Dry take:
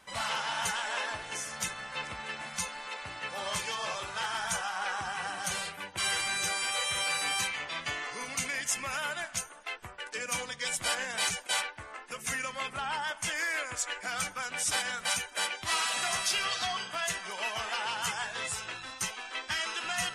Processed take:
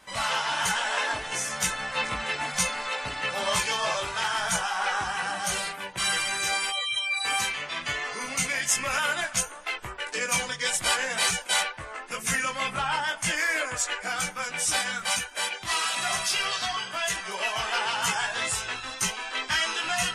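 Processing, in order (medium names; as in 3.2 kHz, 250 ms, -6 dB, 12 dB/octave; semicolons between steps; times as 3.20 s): 6.70–7.25 s: spectral contrast enhancement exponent 2.7; chorus voices 6, 0.3 Hz, delay 19 ms, depth 3.8 ms; gain riding 2 s; trim +8 dB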